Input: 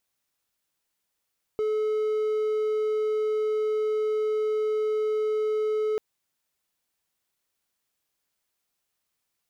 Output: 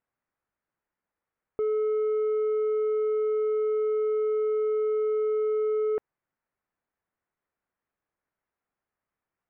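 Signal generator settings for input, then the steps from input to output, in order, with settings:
tone triangle 430 Hz -21 dBFS 4.39 s
LPF 1900 Hz 24 dB/oct

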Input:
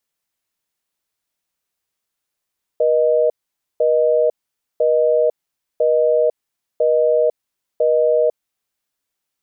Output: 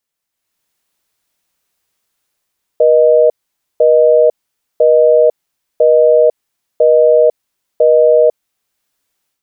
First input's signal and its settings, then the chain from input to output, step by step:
call progress tone busy tone, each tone -15 dBFS 5.83 s
AGC gain up to 10 dB

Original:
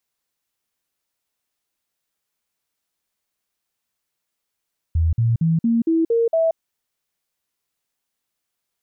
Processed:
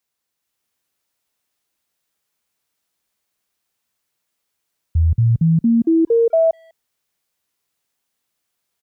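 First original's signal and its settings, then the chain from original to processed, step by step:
stepped sine 81.7 Hz up, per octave 2, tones 7, 0.18 s, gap 0.05 s -14.5 dBFS
speakerphone echo 0.2 s, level -27 dB; AGC gain up to 4 dB; HPF 41 Hz

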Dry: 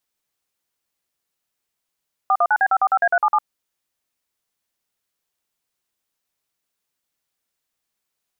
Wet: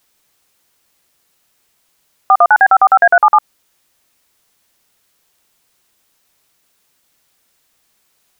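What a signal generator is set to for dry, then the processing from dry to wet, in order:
DTMF "419B545A377", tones 56 ms, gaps 47 ms, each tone -16 dBFS
maximiser +18 dB

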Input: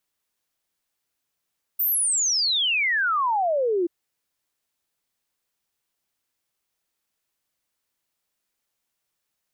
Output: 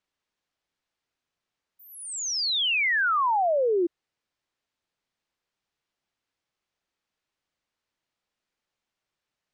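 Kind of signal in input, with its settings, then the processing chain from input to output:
log sweep 15000 Hz -> 330 Hz 2.08 s -19.5 dBFS
air absorption 110 m

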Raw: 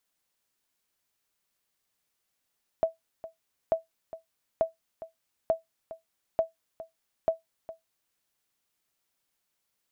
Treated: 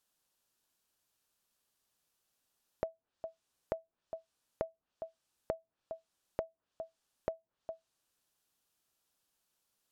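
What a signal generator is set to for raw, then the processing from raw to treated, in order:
sonar ping 653 Hz, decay 0.15 s, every 0.89 s, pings 6, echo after 0.41 s, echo -16 dB -15.5 dBFS
treble ducked by the level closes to 640 Hz, closed at -32.5 dBFS; bell 2100 Hz -7.5 dB 0.35 oct; compressor 6:1, threshold -33 dBFS

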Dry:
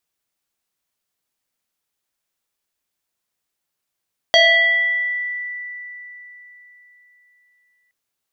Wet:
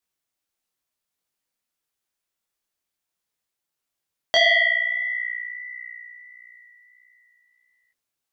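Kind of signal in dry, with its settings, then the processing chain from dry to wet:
FM tone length 3.57 s, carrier 1970 Hz, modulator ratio 0.66, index 1.7, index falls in 1.50 s exponential, decay 3.86 s, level -8 dB
de-hum 208.3 Hz, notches 15; detuned doubles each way 53 cents

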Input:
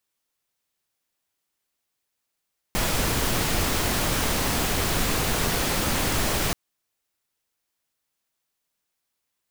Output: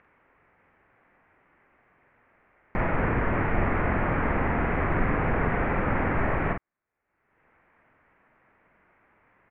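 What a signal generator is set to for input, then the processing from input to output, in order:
noise pink, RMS -24 dBFS 3.78 s
steep low-pass 2200 Hz 48 dB/oct; upward compressor, threshold -44 dBFS; doubler 46 ms -5.5 dB

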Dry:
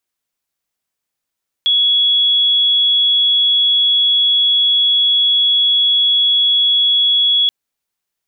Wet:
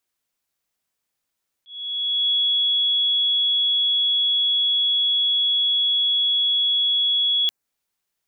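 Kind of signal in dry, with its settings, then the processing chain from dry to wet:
tone sine 3360 Hz -10 dBFS 5.83 s
dynamic EQ 3300 Hz, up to -7 dB, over -28 dBFS, Q 1.7; auto swell 0.629 s

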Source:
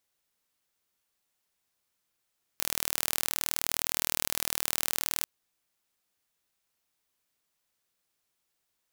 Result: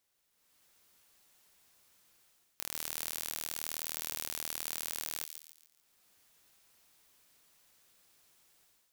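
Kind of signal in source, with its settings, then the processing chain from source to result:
pulse train 39.4/s, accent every 0, -1.5 dBFS 2.64 s
AGC gain up to 12 dB; soft clip -10 dBFS; thin delay 0.14 s, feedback 38%, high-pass 3100 Hz, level -7 dB

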